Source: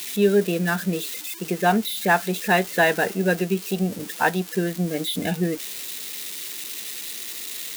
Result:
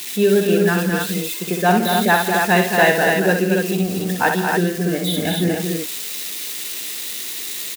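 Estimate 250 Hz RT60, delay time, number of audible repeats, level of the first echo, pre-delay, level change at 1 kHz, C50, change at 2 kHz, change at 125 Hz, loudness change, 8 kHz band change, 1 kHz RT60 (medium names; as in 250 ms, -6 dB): no reverb, 62 ms, 4, -5.5 dB, no reverb, +5.5 dB, no reverb, +5.5 dB, +5.0 dB, +5.5 dB, +5.5 dB, no reverb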